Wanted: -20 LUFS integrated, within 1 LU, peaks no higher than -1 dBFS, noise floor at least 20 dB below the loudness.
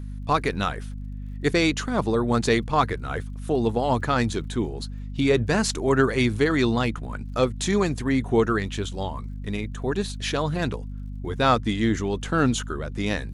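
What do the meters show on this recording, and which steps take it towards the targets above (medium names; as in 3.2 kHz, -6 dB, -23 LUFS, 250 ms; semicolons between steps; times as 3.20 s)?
tick rate 42 per s; hum 50 Hz; highest harmonic 250 Hz; hum level -31 dBFS; loudness -24.5 LUFS; peak level -7.0 dBFS; loudness target -20.0 LUFS
-> de-click; de-hum 50 Hz, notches 5; trim +4.5 dB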